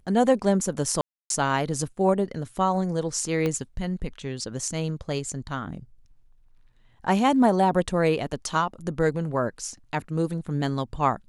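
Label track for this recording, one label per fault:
1.010000	1.300000	dropout 292 ms
3.460000	3.460000	pop -14 dBFS

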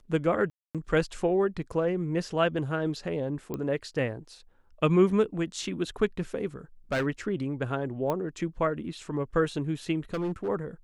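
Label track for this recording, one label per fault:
0.500000	0.750000	dropout 247 ms
3.540000	3.540000	pop -20 dBFS
6.920000	7.070000	clipped -23.5 dBFS
8.100000	8.100000	pop -17 dBFS
10.140000	10.490000	clipped -26.5 dBFS

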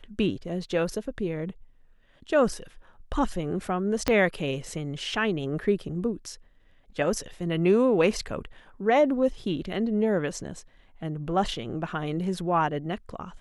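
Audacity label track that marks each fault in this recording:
4.080000	4.080000	pop -8 dBFS

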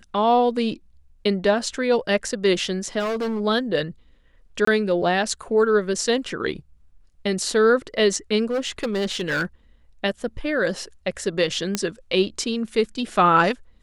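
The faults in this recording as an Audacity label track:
2.990000	3.410000	clipped -22 dBFS
4.650000	4.670000	dropout 24 ms
8.500000	9.460000	clipped -20 dBFS
11.750000	11.750000	pop -7 dBFS

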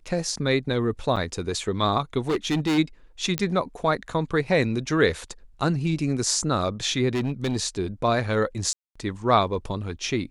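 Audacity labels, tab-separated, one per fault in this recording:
1.160000	1.170000	dropout 5.8 ms
2.210000	2.790000	clipped -20 dBFS
3.380000	3.380000	pop -8 dBFS
7.140000	7.570000	clipped -21 dBFS
8.730000	8.960000	dropout 225 ms

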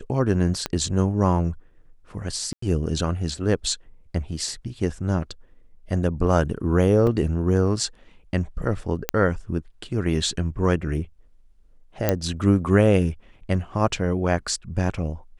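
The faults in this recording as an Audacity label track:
0.660000	0.660000	pop -10 dBFS
2.530000	2.620000	dropout 94 ms
7.070000	7.070000	dropout 3.1 ms
9.090000	9.090000	pop -4 dBFS
12.090000	12.090000	pop -5 dBFS

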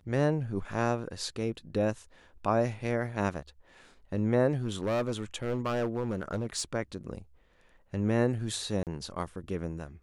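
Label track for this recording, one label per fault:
4.620000	6.620000	clipped -25.5 dBFS
8.830000	8.870000	dropout 38 ms

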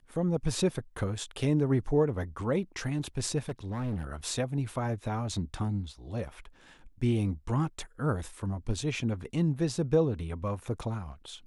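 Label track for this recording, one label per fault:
3.490000	4.040000	clipped -29 dBFS

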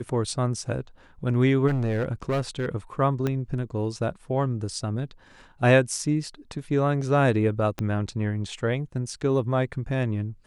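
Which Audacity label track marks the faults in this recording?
1.670000	2.660000	clipped -21 dBFS
3.270000	3.270000	pop -14 dBFS
7.790000	7.790000	pop -16 dBFS

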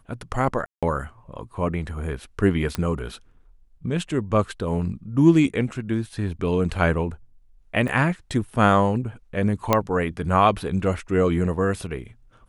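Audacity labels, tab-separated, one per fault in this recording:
0.660000	0.830000	dropout 166 ms
2.750000	2.750000	pop -11 dBFS
7.880000	7.880000	dropout 4.7 ms
9.730000	9.730000	pop -4 dBFS

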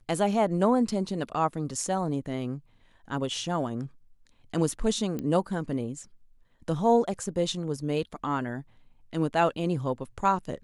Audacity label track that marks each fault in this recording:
5.190000	5.190000	pop -20 dBFS

